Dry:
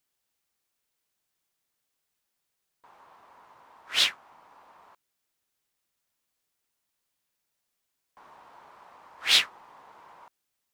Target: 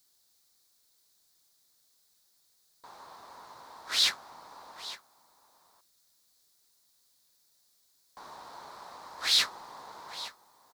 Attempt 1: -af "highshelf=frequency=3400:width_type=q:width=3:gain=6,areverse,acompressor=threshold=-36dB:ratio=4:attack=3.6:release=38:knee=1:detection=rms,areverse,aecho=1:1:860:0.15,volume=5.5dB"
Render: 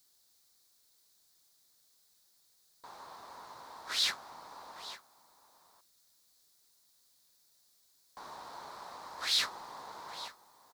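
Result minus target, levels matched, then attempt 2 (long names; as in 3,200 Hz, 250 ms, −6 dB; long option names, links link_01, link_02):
downward compressor: peak gain reduction +5 dB
-af "highshelf=frequency=3400:width_type=q:width=3:gain=6,areverse,acompressor=threshold=-29dB:ratio=4:attack=3.6:release=38:knee=1:detection=rms,areverse,aecho=1:1:860:0.15,volume=5.5dB"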